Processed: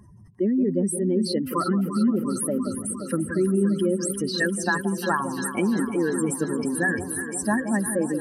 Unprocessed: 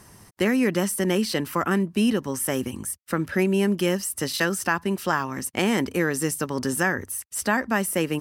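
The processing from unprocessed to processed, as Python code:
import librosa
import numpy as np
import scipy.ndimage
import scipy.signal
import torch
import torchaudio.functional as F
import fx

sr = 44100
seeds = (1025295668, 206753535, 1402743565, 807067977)

y = fx.spec_expand(x, sr, power=2.8)
y = fx.echo_alternate(y, sr, ms=174, hz=950.0, feedback_pct=86, wet_db=-9.0)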